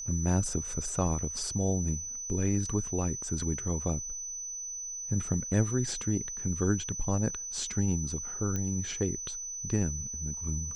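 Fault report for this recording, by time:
tone 6000 Hz -36 dBFS
8.56 pop -20 dBFS

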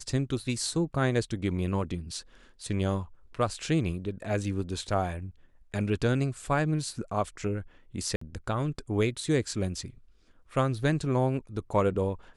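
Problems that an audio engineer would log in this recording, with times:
8.16–8.21 gap 54 ms

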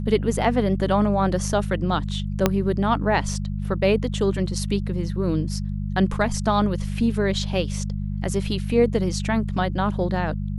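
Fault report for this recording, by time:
hum 50 Hz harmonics 4 -27 dBFS
2.46 pop -3 dBFS

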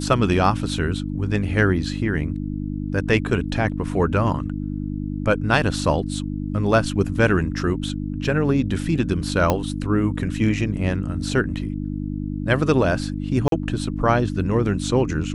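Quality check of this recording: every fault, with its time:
hum 50 Hz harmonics 6 -27 dBFS
9.5 pop -5 dBFS
13.48–13.52 gap 42 ms

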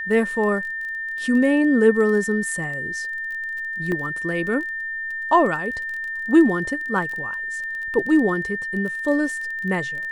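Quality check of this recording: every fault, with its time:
crackle 23/s -29 dBFS
tone 1800 Hz -26 dBFS
3.92 gap 2.2 ms

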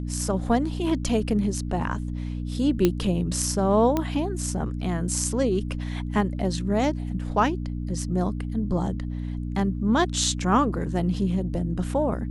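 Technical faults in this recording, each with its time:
hum 60 Hz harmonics 5 -30 dBFS
2.85 pop -7 dBFS
3.97 pop -11 dBFS

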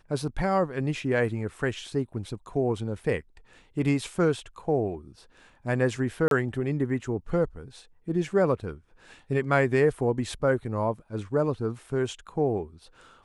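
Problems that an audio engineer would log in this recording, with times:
6.28–6.31 gap 32 ms

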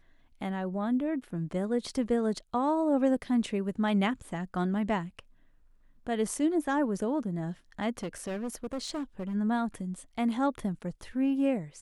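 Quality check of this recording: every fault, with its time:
8.03–9.35 clipped -30.5 dBFS

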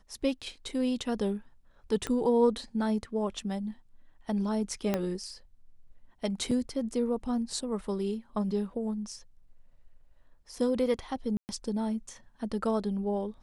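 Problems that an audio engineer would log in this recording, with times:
2.07 pop -19 dBFS
4.94 pop -14 dBFS
6.51 gap 3.7 ms
11.37–11.49 gap 0.119 s

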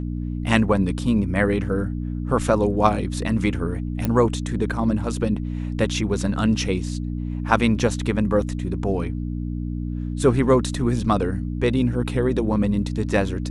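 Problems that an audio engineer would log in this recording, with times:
hum 60 Hz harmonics 5 -27 dBFS
4.05 pop -10 dBFS

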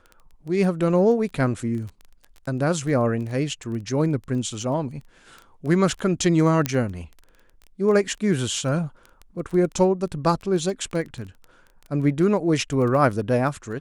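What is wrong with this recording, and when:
crackle 13/s -31 dBFS
6.66 pop -7 dBFS

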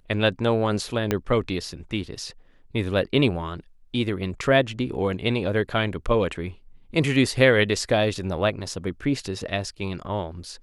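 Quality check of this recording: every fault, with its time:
1.11 pop -8 dBFS

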